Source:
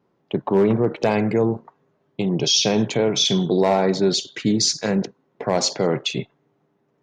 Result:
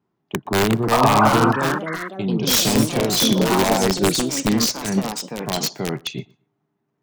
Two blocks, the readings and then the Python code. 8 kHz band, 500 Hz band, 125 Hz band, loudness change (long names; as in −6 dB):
+2.5 dB, −1.5 dB, +2.0 dB, +1.5 dB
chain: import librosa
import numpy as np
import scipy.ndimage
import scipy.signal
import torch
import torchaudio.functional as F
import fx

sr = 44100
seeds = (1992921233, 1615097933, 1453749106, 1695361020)

p1 = scipy.signal.sosfilt(scipy.signal.butter(2, 43.0, 'highpass', fs=sr, output='sos'), x)
p2 = fx.peak_eq(p1, sr, hz=520.0, db=-14.5, octaves=0.26)
p3 = (np.mod(10.0 ** (11.5 / 20.0) * p2 + 1.0, 2.0) - 1.0) / 10.0 ** (11.5 / 20.0)
p4 = fx.low_shelf(p3, sr, hz=120.0, db=5.0)
p5 = fx.spec_paint(p4, sr, seeds[0], shape='noise', start_s=0.91, length_s=0.38, low_hz=570.0, high_hz=1300.0, level_db=-17.0)
p6 = p5 + fx.echo_feedback(p5, sr, ms=119, feedback_pct=21, wet_db=-24.0, dry=0)
p7 = fx.echo_pitch(p6, sr, ms=439, semitones=3, count=3, db_per_echo=-3.0)
p8 = fx.upward_expand(p7, sr, threshold_db=-28.0, expansion=1.5)
y = p8 * librosa.db_to_amplitude(1.0)